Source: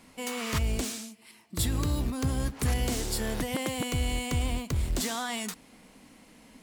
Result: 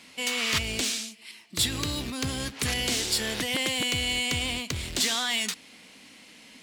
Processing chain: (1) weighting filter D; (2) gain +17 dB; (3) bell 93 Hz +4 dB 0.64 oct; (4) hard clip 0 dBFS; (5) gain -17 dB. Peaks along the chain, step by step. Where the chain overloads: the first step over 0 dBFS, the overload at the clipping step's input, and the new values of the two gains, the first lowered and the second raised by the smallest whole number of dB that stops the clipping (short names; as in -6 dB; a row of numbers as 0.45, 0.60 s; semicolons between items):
-10.5, +6.5, +6.5, 0.0, -17.0 dBFS; step 2, 6.5 dB; step 2 +10 dB, step 5 -10 dB